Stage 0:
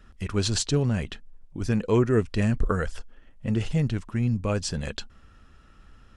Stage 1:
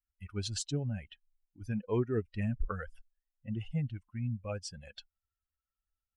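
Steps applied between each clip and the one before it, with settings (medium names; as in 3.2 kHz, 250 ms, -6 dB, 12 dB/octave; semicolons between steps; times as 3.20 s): expander on every frequency bin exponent 2; trim -7.5 dB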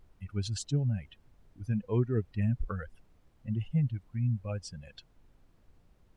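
peaking EQ 130 Hz +8.5 dB 1.6 oct; added noise brown -58 dBFS; trim -2 dB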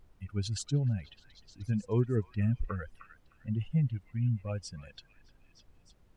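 repeats whose band climbs or falls 306 ms, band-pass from 1.6 kHz, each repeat 0.7 oct, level -10 dB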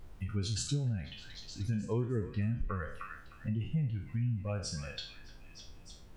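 spectral sustain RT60 0.43 s; compression 2.5:1, threshold -43 dBFS, peak gain reduction 14 dB; trim +7.5 dB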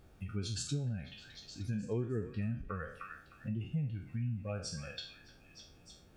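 comb of notches 1 kHz; trim -1.5 dB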